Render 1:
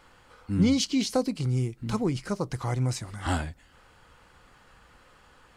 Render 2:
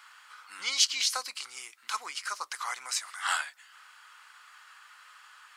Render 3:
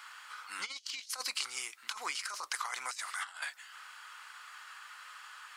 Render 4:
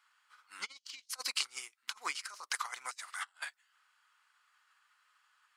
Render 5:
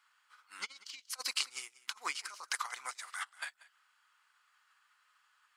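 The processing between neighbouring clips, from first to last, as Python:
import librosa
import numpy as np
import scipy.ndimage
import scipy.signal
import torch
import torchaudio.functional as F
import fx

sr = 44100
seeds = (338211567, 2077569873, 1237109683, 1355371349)

y1 = scipy.signal.sosfilt(scipy.signal.cheby1(3, 1.0, 1200.0, 'highpass', fs=sr, output='sos'), x)
y1 = F.gain(torch.from_numpy(y1), 6.5).numpy()
y2 = fx.over_compress(y1, sr, threshold_db=-37.0, ratio=-0.5)
y2 = F.gain(torch.from_numpy(y2), -1.5).numpy()
y3 = fx.upward_expand(y2, sr, threshold_db=-50.0, expansion=2.5)
y3 = F.gain(torch.from_numpy(y3), 3.5).numpy()
y4 = y3 + 10.0 ** (-20.0 / 20.0) * np.pad(y3, (int(187 * sr / 1000.0), 0))[:len(y3)]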